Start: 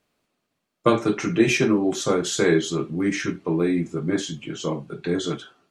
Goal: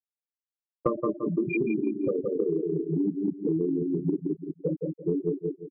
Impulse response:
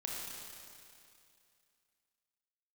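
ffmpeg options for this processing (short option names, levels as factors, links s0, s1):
-filter_complex "[0:a]asplit=2[s0][s1];[1:a]atrim=start_sample=2205,afade=t=out:st=0.34:d=0.01,atrim=end_sample=15435[s2];[s1][s2]afir=irnorm=-1:irlink=0,volume=0.531[s3];[s0][s3]amix=inputs=2:normalize=0,asettb=1/sr,asplit=3[s4][s5][s6];[s4]atrim=end=0.944[s7];[s5]atrim=start=0.94:end=2.89,asetpts=PTS-STARTPTS,afade=t=in:d=0.004:c=qsin,afade=t=out:st=1.946:d=0.004:c=qsin,acrossover=split=110|2800[s8][s9][s10];[s8]acompressor=threshold=0.01:ratio=4[s11];[s9]acompressor=threshold=0.178:ratio=4[s12];[s10]acompressor=threshold=0.0112:ratio=4[s13];[s11][s12][s13]amix=inputs=3:normalize=0[s14];[s6]atrim=start=2.886[s15];[s7][s14]acrossfade=d=0.004:c1=hsin:c2=qsin[s16];[s16][s15]acrossfade=d=0.004:c1=qsin:c2=hsin,afftfilt=real='re*gte(hypot(re,im),0.501)':imag='im*gte(hypot(re,im),0.501)':win_size=1024:overlap=0.75,aecho=1:1:170|340|510:0.501|0.11|0.0243,acompressor=threshold=0.0447:ratio=10,volume=1.5"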